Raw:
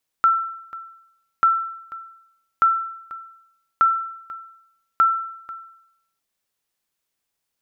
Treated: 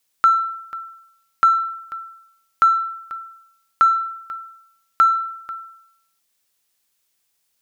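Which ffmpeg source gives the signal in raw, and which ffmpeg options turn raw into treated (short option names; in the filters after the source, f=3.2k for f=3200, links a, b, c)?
-f lavfi -i "aevalsrc='0.335*(sin(2*PI*1340*mod(t,1.19))*exp(-6.91*mod(t,1.19)/0.78)+0.126*sin(2*PI*1340*max(mod(t,1.19)-0.49,0))*exp(-6.91*max(mod(t,1.19)-0.49,0)/0.78))':d=5.95:s=44100"
-filter_complex "[0:a]highshelf=f=2.3k:g=8.5,asplit=2[a][b];[b]asoftclip=type=tanh:threshold=-23dB,volume=-11dB[c];[a][c]amix=inputs=2:normalize=0"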